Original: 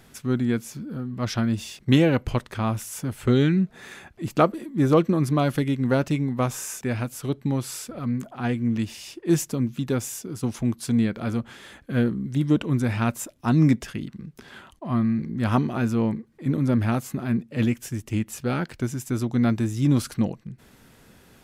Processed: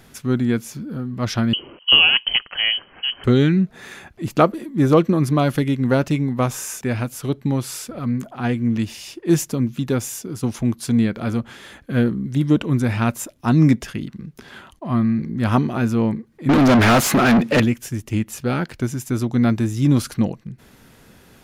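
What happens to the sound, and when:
1.53–3.24 s: frequency inversion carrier 3.1 kHz
16.49–17.60 s: overdrive pedal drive 34 dB, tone 4.2 kHz, clips at -10.5 dBFS
whole clip: band-stop 8 kHz, Q 16; trim +4 dB

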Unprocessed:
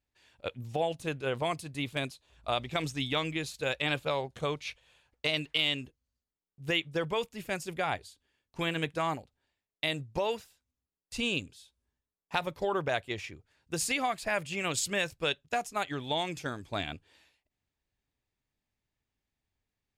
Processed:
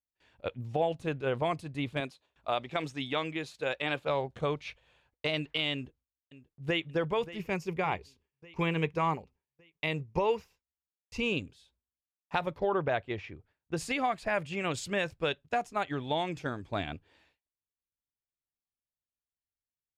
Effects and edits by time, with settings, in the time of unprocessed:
2.00–4.09 s: high-pass 300 Hz 6 dB/octave
5.73–6.86 s: echo throw 580 ms, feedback 60%, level -15.5 dB
7.39–11.33 s: rippled EQ curve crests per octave 0.8, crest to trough 8 dB
12.58–13.77 s: Gaussian low-pass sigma 1.5 samples
whole clip: low-pass 1.8 kHz 6 dB/octave; gate with hold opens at -59 dBFS; trim +2 dB

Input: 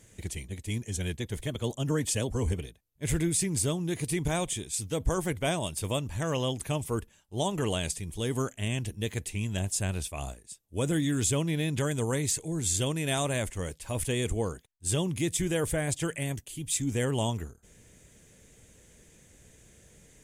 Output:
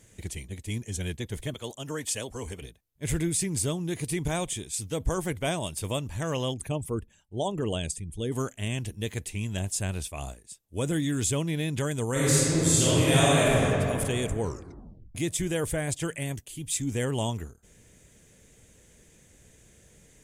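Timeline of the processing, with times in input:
1.54–2.62 s: bass shelf 340 Hz -12 dB
6.54–8.32 s: resonances exaggerated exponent 1.5
12.11–13.63 s: reverb throw, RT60 2.7 s, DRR -8.5 dB
14.41 s: tape stop 0.74 s

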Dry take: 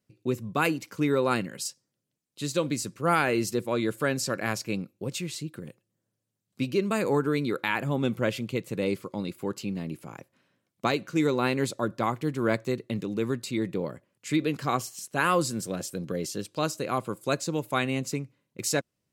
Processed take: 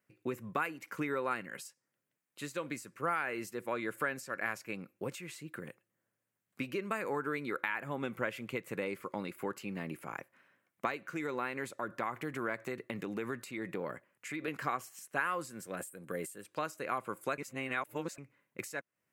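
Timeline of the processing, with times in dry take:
10.98–14.48 s: compression 2.5:1, threshold -29 dBFS
15.77–16.44 s: resonant high shelf 7 kHz +7 dB, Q 3
17.38–18.18 s: reverse
whole clip: tilt EQ +3.5 dB/octave; compression 5:1, threshold -34 dBFS; resonant high shelf 2.8 kHz -14 dB, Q 1.5; trim +1.5 dB

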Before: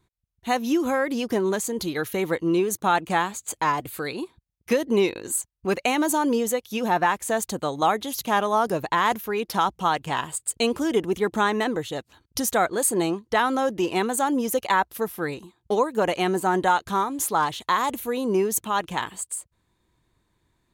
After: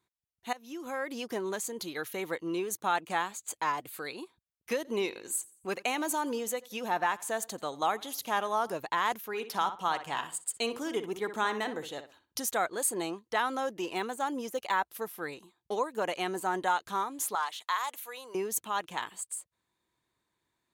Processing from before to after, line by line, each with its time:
0.53–1.17 s: fade in, from -19.5 dB
4.76–8.74 s: feedback delay 87 ms, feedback 41%, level -22 dB
9.27–12.42 s: filtered feedback delay 61 ms, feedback 26%, low-pass 3.5 kHz, level -10 dB
13.78–14.85 s: de-esser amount 65%
17.35–18.35 s: high-pass 840 Hz
whole clip: high-pass 150 Hz 6 dB/octave; bass shelf 380 Hz -7.5 dB; trim -6.5 dB

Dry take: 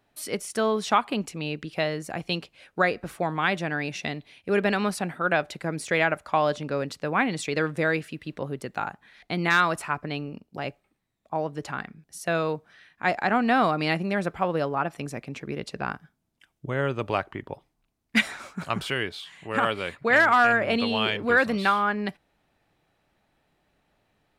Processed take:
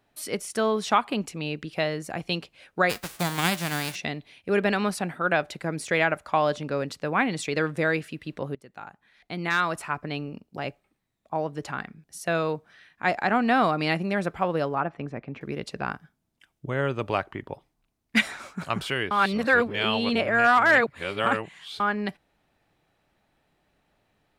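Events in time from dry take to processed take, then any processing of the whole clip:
2.89–3.94 s: formants flattened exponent 0.3
8.55–10.20 s: fade in, from -17.5 dB
14.80–15.41 s: low-pass 2 kHz
19.11–21.80 s: reverse

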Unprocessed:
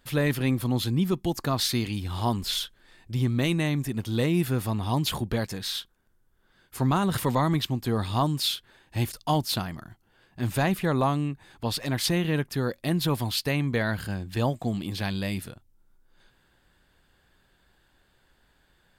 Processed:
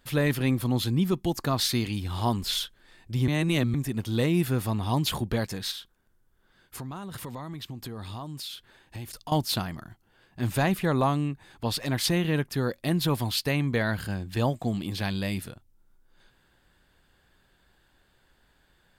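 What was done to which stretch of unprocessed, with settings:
3.28–3.74 s: reverse
5.71–9.32 s: compression, threshold -35 dBFS

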